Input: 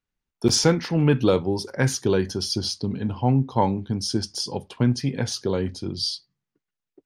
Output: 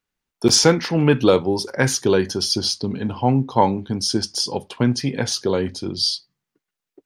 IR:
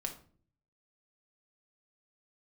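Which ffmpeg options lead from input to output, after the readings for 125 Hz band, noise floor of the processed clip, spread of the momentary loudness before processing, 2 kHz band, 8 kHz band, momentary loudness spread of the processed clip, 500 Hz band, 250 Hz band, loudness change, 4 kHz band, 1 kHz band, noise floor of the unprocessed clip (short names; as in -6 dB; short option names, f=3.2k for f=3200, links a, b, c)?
0.0 dB, -85 dBFS, 8 LU, +6.0 dB, +6.0 dB, 8 LU, +5.0 dB, +3.0 dB, +4.0 dB, +6.0 dB, +5.5 dB, under -85 dBFS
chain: -af "lowshelf=f=170:g=-9.5,volume=6dB"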